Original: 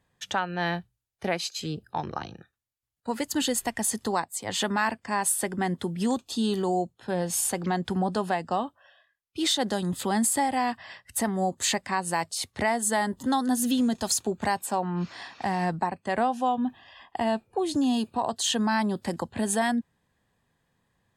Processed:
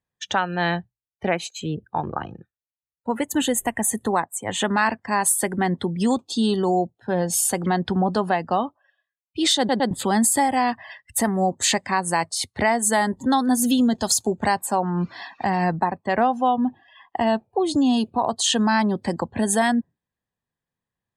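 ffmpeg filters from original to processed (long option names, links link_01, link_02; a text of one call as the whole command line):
ffmpeg -i in.wav -filter_complex "[0:a]asettb=1/sr,asplit=3[link_01][link_02][link_03];[link_01]atrim=end=1.284[link_04];[link_02]atrim=start=1.28:end=4.74,asetpts=PTS-STARTPTS,afade=type=in:duration=0.004:curve=qsin,afade=type=out:start_time=3.456:duration=0.004:curve=qsin,equalizer=frequency=4800:width=2.5:gain=-13[link_05];[link_03]atrim=start=4.736[link_06];[link_04][link_05]acrossfade=duration=0.004:curve1=hsin:curve2=qsin[link_07];[link_07][link_06]acrossfade=duration=0.004:curve1=qsin:curve2=hsin,asplit=4[link_08][link_09][link_10][link_11];[link_08]atrim=end=9.692[link_12];[link_09]atrim=start=9.578:end=9.692[link_13];[link_10]atrim=start=9.578:end=9.692[link_14];[link_11]atrim=start=9.908[link_15];[link_12][link_13]acrossfade=duration=0.004:curve1=hsin:curve2=hsin[link_16];[link_16][link_14]acrossfade=duration=0.004:curve1=hsin:curve2=hsin[link_17];[link_17][link_15]acrossfade=duration=0.004:curve1=hsin:curve2=hsin,afftdn=noise_reduction=21:noise_floor=-45,volume=5.5dB" out.wav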